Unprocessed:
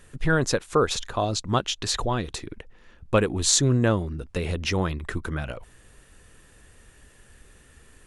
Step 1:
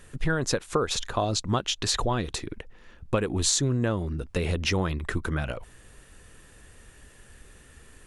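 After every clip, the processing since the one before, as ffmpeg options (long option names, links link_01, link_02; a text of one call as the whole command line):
ffmpeg -i in.wav -af "acompressor=threshold=-22dB:ratio=10,volume=1.5dB" out.wav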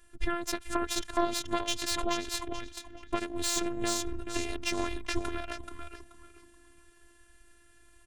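ffmpeg -i in.wav -filter_complex "[0:a]asplit=5[link_01][link_02][link_03][link_04][link_05];[link_02]adelay=430,afreqshift=-110,volume=-5.5dB[link_06];[link_03]adelay=860,afreqshift=-220,volume=-14.9dB[link_07];[link_04]adelay=1290,afreqshift=-330,volume=-24.2dB[link_08];[link_05]adelay=1720,afreqshift=-440,volume=-33.6dB[link_09];[link_01][link_06][link_07][link_08][link_09]amix=inputs=5:normalize=0,afftfilt=real='hypot(re,im)*cos(PI*b)':imag='0':win_size=512:overlap=0.75,aeval=exprs='0.376*(cos(1*acos(clip(val(0)/0.376,-1,1)))-cos(1*PI/2))+0.0211*(cos(5*acos(clip(val(0)/0.376,-1,1)))-cos(5*PI/2))+0.0596*(cos(6*acos(clip(val(0)/0.376,-1,1)))-cos(6*PI/2))+0.0299*(cos(7*acos(clip(val(0)/0.376,-1,1)))-cos(7*PI/2))':channel_layout=same,volume=-4.5dB" out.wav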